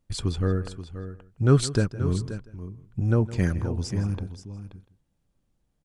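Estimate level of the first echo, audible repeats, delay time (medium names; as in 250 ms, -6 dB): -17.0 dB, 3, 162 ms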